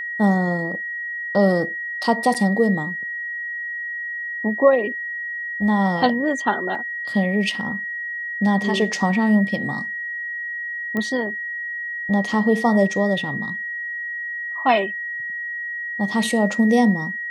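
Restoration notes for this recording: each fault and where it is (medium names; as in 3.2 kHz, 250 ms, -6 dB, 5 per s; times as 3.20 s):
whine 1.9 kHz -26 dBFS
2.34–2.35 s: dropout 7.3 ms
6.75 s: dropout 3.1 ms
10.97 s: pop -14 dBFS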